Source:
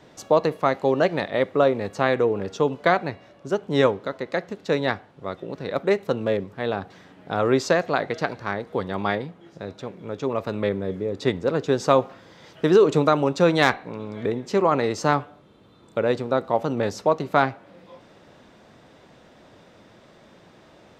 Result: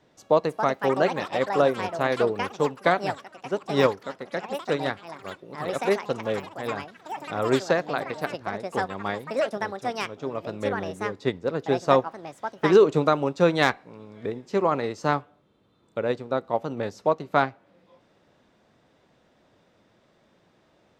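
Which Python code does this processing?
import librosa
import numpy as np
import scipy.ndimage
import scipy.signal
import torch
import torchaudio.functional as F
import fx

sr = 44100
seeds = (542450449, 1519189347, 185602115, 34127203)

y = fx.echo_pitch(x, sr, ms=370, semitones=6, count=3, db_per_echo=-6.0)
y = fx.upward_expand(y, sr, threshold_db=-34.0, expansion=1.5)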